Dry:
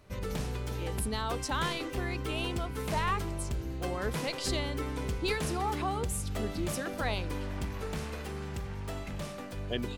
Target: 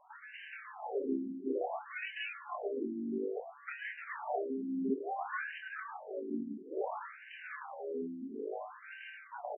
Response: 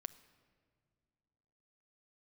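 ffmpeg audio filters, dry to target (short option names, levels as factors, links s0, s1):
-filter_complex "[0:a]areverse,acompressor=mode=upward:threshold=0.0141:ratio=2.5,areverse,aeval=exprs='val(0)*sin(2*PI*320*n/s)':c=same,asplit=2[s0][s1];[s1]aecho=0:1:176:0.237[s2];[s0][s2]amix=inputs=2:normalize=0,tremolo=f=1.8:d=0.5,asplit=2[s3][s4];[s4]adelay=28,volume=0.631[s5];[s3][s5]amix=inputs=2:normalize=0,asetrate=45938,aresample=44100,afftfilt=real='re*between(b*sr/1024,250*pow(2200/250,0.5+0.5*sin(2*PI*0.58*pts/sr))/1.41,250*pow(2200/250,0.5+0.5*sin(2*PI*0.58*pts/sr))*1.41)':imag='im*between(b*sr/1024,250*pow(2200/250,0.5+0.5*sin(2*PI*0.58*pts/sr))/1.41,250*pow(2200/250,0.5+0.5*sin(2*PI*0.58*pts/sr))*1.41)':win_size=1024:overlap=0.75,volume=1.88"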